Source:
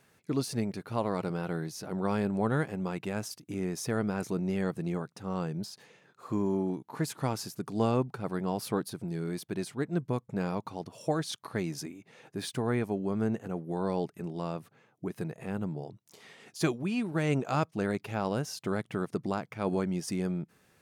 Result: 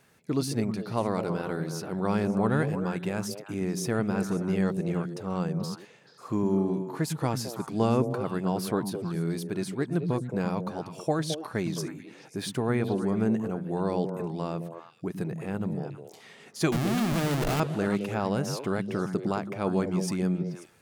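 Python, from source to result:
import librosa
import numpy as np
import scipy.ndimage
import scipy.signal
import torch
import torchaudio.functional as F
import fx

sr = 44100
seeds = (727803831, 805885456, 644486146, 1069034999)

y = fx.schmitt(x, sr, flips_db=-41.0, at=(16.72, 17.6))
y = fx.echo_stepped(y, sr, ms=108, hz=170.0, octaves=1.4, feedback_pct=70, wet_db=-2.5)
y = y * librosa.db_to_amplitude(2.5)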